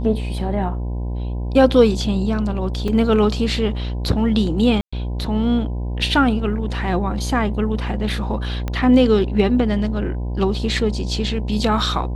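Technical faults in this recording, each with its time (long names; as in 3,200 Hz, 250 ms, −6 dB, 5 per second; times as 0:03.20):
mains buzz 60 Hz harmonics 17 −24 dBFS
0:02.88: drop-out 3.8 ms
0:04.81–0:04.92: drop-out 115 ms
0:08.68: click −12 dBFS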